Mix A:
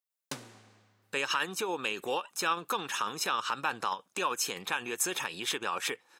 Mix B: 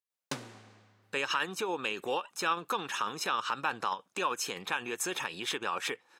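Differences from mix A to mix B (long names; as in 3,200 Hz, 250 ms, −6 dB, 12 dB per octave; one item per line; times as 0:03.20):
background +3.5 dB
master: add high-shelf EQ 6,800 Hz −8 dB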